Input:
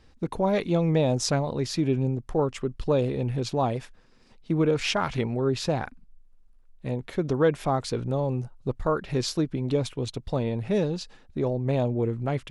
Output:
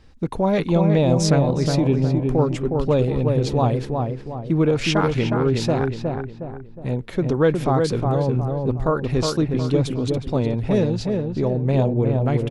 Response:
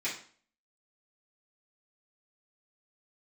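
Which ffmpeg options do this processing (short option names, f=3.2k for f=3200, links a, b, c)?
-filter_complex "[0:a]bass=f=250:g=3,treble=f=4k:g=-1,asplit=2[a][b];[b]adelay=363,lowpass=f=1.6k:p=1,volume=-3.5dB,asplit=2[c][d];[d]adelay=363,lowpass=f=1.6k:p=1,volume=0.45,asplit=2[e][f];[f]adelay=363,lowpass=f=1.6k:p=1,volume=0.45,asplit=2[g][h];[h]adelay=363,lowpass=f=1.6k:p=1,volume=0.45,asplit=2[i][j];[j]adelay=363,lowpass=f=1.6k:p=1,volume=0.45,asplit=2[k][l];[l]adelay=363,lowpass=f=1.6k:p=1,volume=0.45[m];[c][e][g][i][k][m]amix=inputs=6:normalize=0[n];[a][n]amix=inputs=2:normalize=0,volume=3.5dB"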